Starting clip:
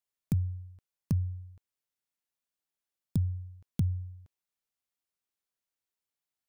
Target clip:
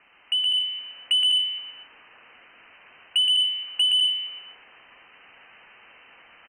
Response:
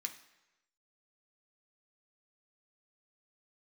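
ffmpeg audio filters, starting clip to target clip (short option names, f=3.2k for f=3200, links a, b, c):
-filter_complex "[0:a]aeval=exprs='val(0)+0.5*0.00562*sgn(val(0))':c=same,asplit=2[a][b];[b]aecho=0:1:120|198|248.7|281.7|303.1:0.631|0.398|0.251|0.158|0.1[c];[a][c]amix=inputs=2:normalize=0,lowpass=f=2.6k:t=q:w=0.5098,lowpass=f=2.6k:t=q:w=0.6013,lowpass=f=2.6k:t=q:w=0.9,lowpass=f=2.6k:t=q:w=2.563,afreqshift=-3100,asplit=2[d][e];[1:a]atrim=start_sample=2205[f];[e][f]afir=irnorm=-1:irlink=0,volume=-2dB[g];[d][g]amix=inputs=2:normalize=0,dynaudnorm=f=440:g=3:m=4.5dB,asoftclip=type=tanh:threshold=-15dB"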